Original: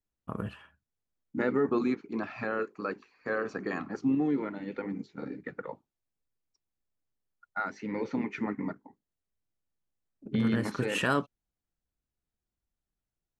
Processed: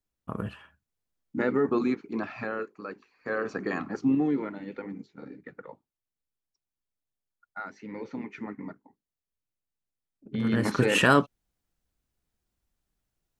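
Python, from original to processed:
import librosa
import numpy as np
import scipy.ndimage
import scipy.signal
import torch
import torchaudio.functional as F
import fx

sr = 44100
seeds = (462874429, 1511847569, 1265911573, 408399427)

y = fx.gain(x, sr, db=fx.line((2.3, 2.0), (2.86, -5.0), (3.51, 3.0), (4.15, 3.0), (5.19, -5.0), (10.29, -5.0), (10.71, 7.5)))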